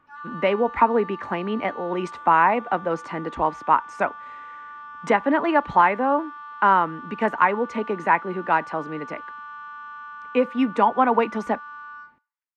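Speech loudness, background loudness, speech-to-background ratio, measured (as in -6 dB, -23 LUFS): -22.5 LUFS, -38.0 LUFS, 15.5 dB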